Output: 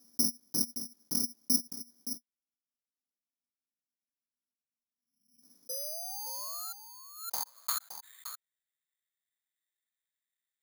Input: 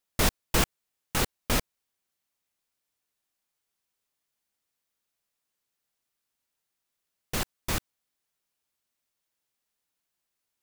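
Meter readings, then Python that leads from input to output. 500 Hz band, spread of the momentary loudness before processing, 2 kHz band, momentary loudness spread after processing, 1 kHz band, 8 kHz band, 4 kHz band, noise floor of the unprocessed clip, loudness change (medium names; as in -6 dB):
-13.5 dB, 6 LU, -20.5 dB, 16 LU, -9.5 dB, +2.0 dB, -3.0 dB, -84 dBFS, -4.0 dB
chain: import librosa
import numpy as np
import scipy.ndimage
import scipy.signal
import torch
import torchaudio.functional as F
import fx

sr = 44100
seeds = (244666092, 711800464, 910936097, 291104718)

p1 = fx.spec_box(x, sr, start_s=4.54, length_s=0.89, low_hz=270.0, high_hz=2300.0, gain_db=-26)
p2 = fx.highpass(p1, sr, hz=160.0, slope=6)
p3 = fx.peak_eq(p2, sr, hz=460.0, db=-3.0, octaves=0.77)
p4 = fx.transient(p3, sr, attack_db=6, sustain_db=-4)
p5 = fx.spec_paint(p4, sr, seeds[0], shape='rise', start_s=5.69, length_s=1.04, low_hz=500.0, high_hz=1400.0, level_db=-23.0)
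p6 = fx.filter_sweep_bandpass(p5, sr, from_hz=240.0, to_hz=1900.0, start_s=6.02, end_s=8.16, q=7.8)
p7 = p6 + fx.echo_single(p6, sr, ms=569, db=-10.5, dry=0)
p8 = (np.kron(scipy.signal.resample_poly(p7, 1, 8), np.eye(8)[0]) * 8)[:len(p7)]
y = fx.pre_swell(p8, sr, db_per_s=84.0)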